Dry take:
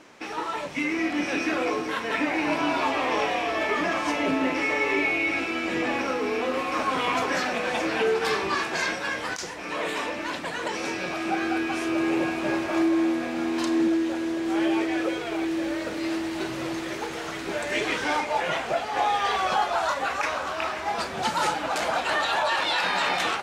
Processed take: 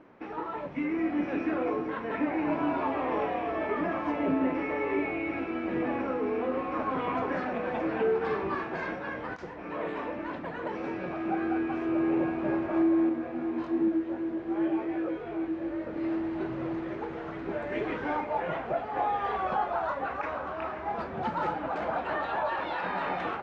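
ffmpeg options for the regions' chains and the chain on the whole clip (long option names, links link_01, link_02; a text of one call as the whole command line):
ffmpeg -i in.wav -filter_complex "[0:a]asettb=1/sr,asplit=3[link_01][link_02][link_03];[link_01]atrim=end=13.094[link_04];[link_02]atrim=start=13.09:end=15.96,asetpts=PTS-STARTPTS,afade=type=in:duration=0.004:curve=qsin,afade=type=out:start_time=2.866:duration=0.004:curve=qsin,highpass=40,flanger=delay=18.5:depth=4.2:speed=2.6[link_05];[link_03]atrim=start=15.956[link_06];[link_04][link_05]acrossfade=duration=0.004:curve1=hsin:curve2=qsin[link_07];[link_07][link_06]acrossfade=duration=0.004:curve1=qsin:curve2=hsin,lowpass=1600,lowshelf=frequency=480:gain=6.5,volume=-6dB" out.wav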